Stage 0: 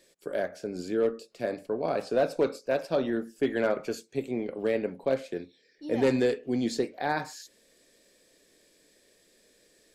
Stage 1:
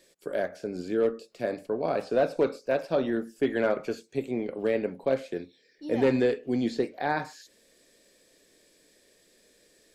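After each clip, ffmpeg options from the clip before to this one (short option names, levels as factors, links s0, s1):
-filter_complex "[0:a]acrossover=split=3900[s0][s1];[s1]acompressor=threshold=0.00224:ratio=4:attack=1:release=60[s2];[s0][s2]amix=inputs=2:normalize=0,volume=1.12"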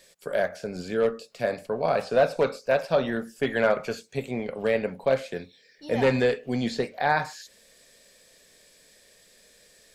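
-af "equalizer=f=320:t=o:w=0.76:g=-13.5,volume=2.11"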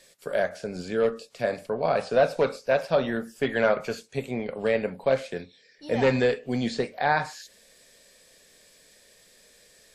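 -ar 44100 -c:a wmav2 -b:a 64k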